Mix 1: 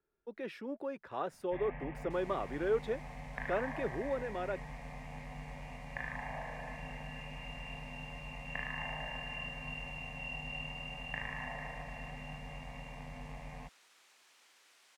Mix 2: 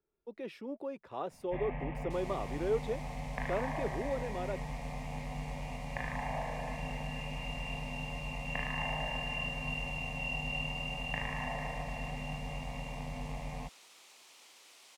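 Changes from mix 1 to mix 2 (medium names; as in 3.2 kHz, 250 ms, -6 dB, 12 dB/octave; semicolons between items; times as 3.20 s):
first sound +6.5 dB; second sound +8.5 dB; master: add peaking EQ 1.6 kHz -9 dB 0.65 oct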